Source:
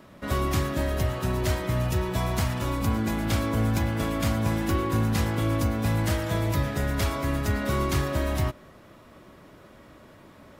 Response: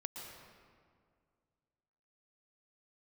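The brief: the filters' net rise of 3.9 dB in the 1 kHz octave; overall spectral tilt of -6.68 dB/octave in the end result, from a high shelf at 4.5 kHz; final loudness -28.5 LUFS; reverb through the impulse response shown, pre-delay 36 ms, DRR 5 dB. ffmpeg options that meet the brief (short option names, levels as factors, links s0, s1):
-filter_complex "[0:a]equalizer=f=1000:t=o:g=5,highshelf=f=4500:g=-7.5,asplit=2[s0][s1];[1:a]atrim=start_sample=2205,adelay=36[s2];[s1][s2]afir=irnorm=-1:irlink=0,volume=0.668[s3];[s0][s3]amix=inputs=2:normalize=0,volume=0.596"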